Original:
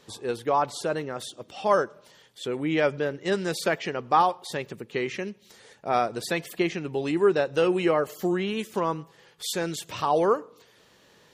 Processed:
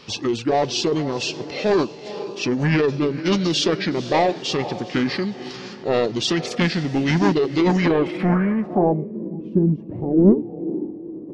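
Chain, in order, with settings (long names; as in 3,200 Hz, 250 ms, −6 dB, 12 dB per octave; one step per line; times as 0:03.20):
dynamic equaliser 1,700 Hz, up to −8 dB, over −42 dBFS, Q 1.2
in parallel at −2.5 dB: brickwall limiter −18 dBFS, peak gain reduction 7.5 dB
on the sum: feedback delay with all-pass diffusion 485 ms, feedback 42%, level −14.5 dB
soft clipping −17 dBFS, distortion −14 dB
low-pass filter sweep 6,700 Hz → 390 Hz, 0:07.78–0:09.26
formants moved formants −5 semitones
level +5 dB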